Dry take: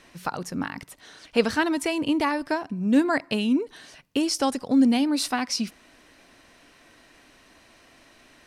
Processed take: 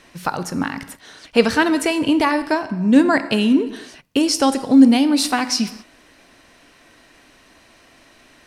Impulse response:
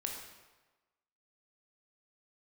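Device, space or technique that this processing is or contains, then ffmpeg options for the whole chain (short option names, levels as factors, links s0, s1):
keyed gated reverb: -filter_complex "[0:a]asplit=3[s0][s1][s2];[1:a]atrim=start_sample=2205[s3];[s1][s3]afir=irnorm=-1:irlink=0[s4];[s2]apad=whole_len=373224[s5];[s4][s5]sidechaingate=range=0.0224:threshold=0.00501:ratio=16:detection=peak,volume=0.473[s6];[s0][s6]amix=inputs=2:normalize=0,asettb=1/sr,asplit=3[s7][s8][s9];[s7]atrim=end=2.654[s10];[s8]atrim=start=2.65:end=3.18,asetpts=PTS-STARTPTS,afade=t=in:d=0.004:c=qsin,afade=t=out:st=0.526:d=0.004:c=qsin,lowpass=11000[s11];[s9]atrim=start=3.176[s12];[s10][s11]acrossfade=d=0.004:c1=hsin:c2=qsin[s13];[s13][s12]acrossfade=d=0.004:c1=qsin:c2=hsin,volume=1.58"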